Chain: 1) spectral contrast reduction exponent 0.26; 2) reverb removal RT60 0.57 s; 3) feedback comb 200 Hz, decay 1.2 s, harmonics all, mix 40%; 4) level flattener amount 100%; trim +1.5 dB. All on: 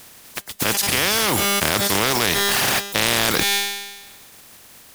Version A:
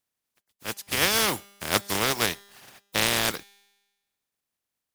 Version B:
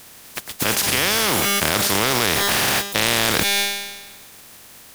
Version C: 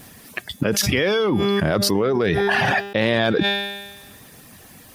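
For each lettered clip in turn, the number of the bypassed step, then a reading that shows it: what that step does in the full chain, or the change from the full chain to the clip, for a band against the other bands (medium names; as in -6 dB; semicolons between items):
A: 4, crest factor change +5.0 dB; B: 2, momentary loudness spread change +1 LU; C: 1, 8 kHz band -11.0 dB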